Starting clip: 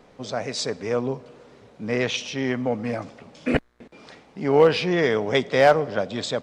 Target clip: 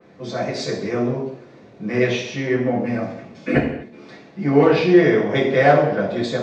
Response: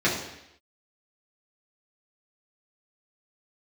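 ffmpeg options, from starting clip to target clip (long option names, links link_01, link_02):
-filter_complex "[1:a]atrim=start_sample=2205,afade=type=out:start_time=0.32:duration=0.01,atrim=end_sample=14553[link_01];[0:a][link_01]afir=irnorm=-1:irlink=0,adynamicequalizer=threshold=0.0708:dfrequency=3100:dqfactor=0.7:tfrequency=3100:tqfactor=0.7:attack=5:release=100:ratio=0.375:range=3:mode=cutabove:tftype=highshelf,volume=-12dB"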